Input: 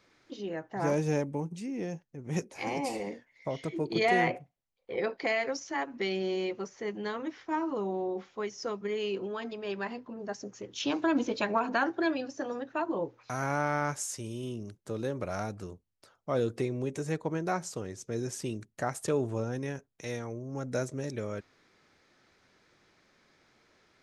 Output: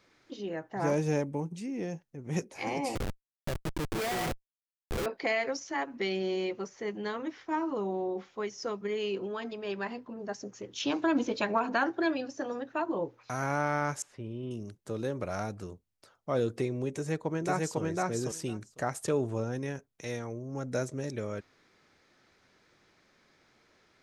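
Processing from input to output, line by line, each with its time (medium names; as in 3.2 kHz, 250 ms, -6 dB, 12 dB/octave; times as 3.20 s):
2.95–5.06 s: Schmitt trigger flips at -31 dBFS
14.02–14.51 s: distance through air 450 m
16.91–17.81 s: echo throw 500 ms, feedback 10%, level -0.5 dB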